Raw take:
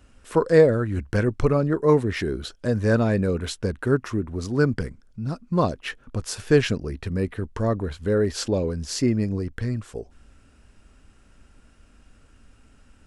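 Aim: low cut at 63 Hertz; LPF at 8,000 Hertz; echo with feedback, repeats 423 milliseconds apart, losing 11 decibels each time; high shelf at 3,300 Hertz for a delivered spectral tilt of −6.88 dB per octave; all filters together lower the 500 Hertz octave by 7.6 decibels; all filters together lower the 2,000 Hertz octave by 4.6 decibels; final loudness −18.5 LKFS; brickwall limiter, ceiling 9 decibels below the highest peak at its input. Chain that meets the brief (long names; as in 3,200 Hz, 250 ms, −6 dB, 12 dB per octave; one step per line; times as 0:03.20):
high-pass filter 63 Hz
low-pass filter 8,000 Hz
parametric band 500 Hz −8.5 dB
parametric band 2,000 Hz −4 dB
high-shelf EQ 3,300 Hz −5.5 dB
brickwall limiter −18.5 dBFS
repeating echo 423 ms, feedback 28%, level −11 dB
level +11 dB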